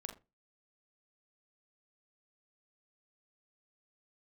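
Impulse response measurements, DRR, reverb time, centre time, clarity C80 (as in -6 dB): 2.5 dB, no single decay rate, 18 ms, 18.0 dB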